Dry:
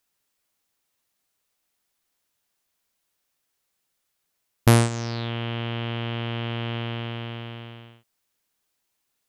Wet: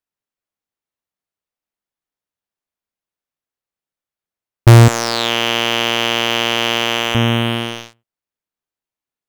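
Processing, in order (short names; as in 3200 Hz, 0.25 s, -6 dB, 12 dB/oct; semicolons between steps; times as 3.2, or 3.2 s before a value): 4.88–7.15 weighting filter A; sample leveller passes 5; mismatched tape noise reduction decoder only; gain +1.5 dB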